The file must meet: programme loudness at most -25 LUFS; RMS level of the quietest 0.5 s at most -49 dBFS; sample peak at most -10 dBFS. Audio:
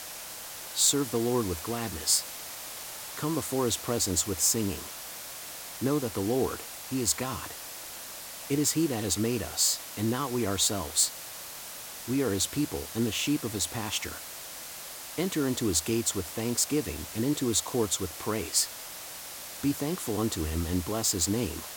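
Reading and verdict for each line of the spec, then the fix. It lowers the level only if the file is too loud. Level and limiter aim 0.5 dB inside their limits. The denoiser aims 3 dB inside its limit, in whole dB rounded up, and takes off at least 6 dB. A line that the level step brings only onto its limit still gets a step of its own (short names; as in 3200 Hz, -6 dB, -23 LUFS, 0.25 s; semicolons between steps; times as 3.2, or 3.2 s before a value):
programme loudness -29.5 LUFS: OK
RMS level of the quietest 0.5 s -42 dBFS: fail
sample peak -9.5 dBFS: fail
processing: denoiser 10 dB, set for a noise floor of -42 dBFS; limiter -10.5 dBFS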